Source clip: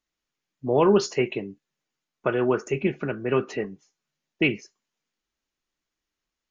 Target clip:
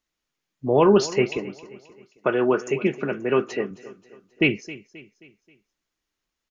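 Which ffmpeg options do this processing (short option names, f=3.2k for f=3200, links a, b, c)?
-filter_complex "[0:a]asettb=1/sr,asplit=3[a][b][c];[a]atrim=end=1.374[d];[b]atrim=start=1.37:end=3.71,asetpts=PTS-STARTPTS,afade=t=in:d=0.004:c=qsin,afade=t=out:st=2.336:d=0.004:c=qsin,highpass=170[e];[c]atrim=start=3.706[f];[d][e]acrossfade=d=0.004:c1=hsin:c2=qsin[g];[g][f]acrossfade=d=0.004:c1=qsin:c2=hsin,aecho=1:1:266|532|798|1064:0.133|0.06|0.027|0.0122,volume=2.5dB"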